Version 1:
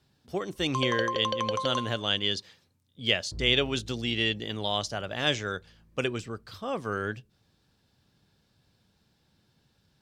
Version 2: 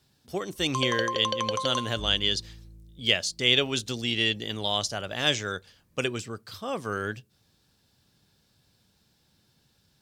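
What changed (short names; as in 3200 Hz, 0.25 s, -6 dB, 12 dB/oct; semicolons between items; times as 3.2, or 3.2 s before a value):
second sound: entry -1.35 s; master: add high shelf 4900 Hz +10 dB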